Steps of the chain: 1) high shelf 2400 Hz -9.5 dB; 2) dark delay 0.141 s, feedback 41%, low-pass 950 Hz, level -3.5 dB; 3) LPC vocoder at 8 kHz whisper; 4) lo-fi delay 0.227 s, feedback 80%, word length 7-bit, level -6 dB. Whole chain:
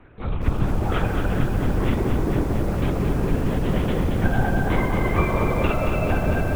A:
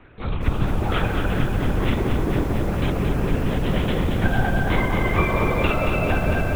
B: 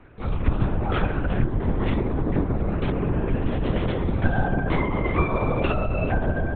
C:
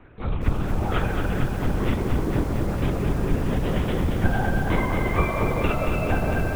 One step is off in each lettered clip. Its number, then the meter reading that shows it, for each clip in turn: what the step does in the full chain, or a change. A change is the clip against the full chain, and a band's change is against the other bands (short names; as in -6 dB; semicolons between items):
1, 4 kHz band +5.0 dB; 4, loudness change -1.5 LU; 2, crest factor change +2.0 dB